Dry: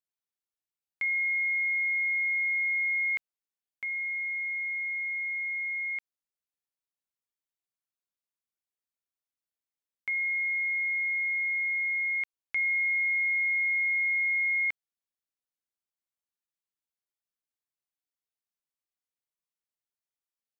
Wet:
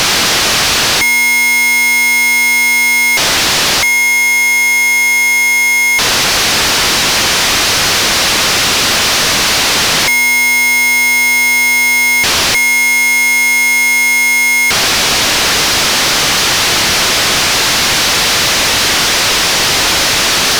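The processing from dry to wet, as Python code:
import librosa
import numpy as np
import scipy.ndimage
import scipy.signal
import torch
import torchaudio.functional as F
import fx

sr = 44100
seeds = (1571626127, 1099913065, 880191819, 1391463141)

y = fx.delta_mod(x, sr, bps=32000, step_db=-34.5)
y = fx.fuzz(y, sr, gain_db=51.0, gate_db=-55.0)
y = F.gain(torch.from_numpy(y), 3.5).numpy()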